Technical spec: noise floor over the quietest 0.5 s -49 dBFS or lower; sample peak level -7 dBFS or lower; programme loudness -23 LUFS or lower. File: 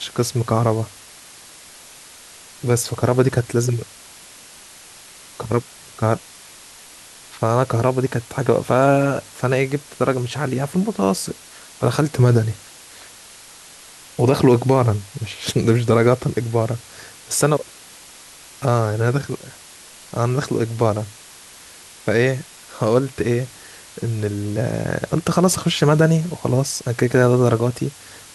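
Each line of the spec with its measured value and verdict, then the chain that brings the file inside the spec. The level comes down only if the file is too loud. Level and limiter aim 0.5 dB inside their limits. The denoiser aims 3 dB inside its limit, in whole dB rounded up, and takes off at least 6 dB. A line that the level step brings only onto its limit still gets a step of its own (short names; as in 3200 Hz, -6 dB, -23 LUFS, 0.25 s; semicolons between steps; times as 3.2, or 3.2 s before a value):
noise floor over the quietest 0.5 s -43 dBFS: fail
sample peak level -3.0 dBFS: fail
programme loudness -20.0 LUFS: fail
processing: denoiser 6 dB, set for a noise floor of -43 dBFS; gain -3.5 dB; limiter -7.5 dBFS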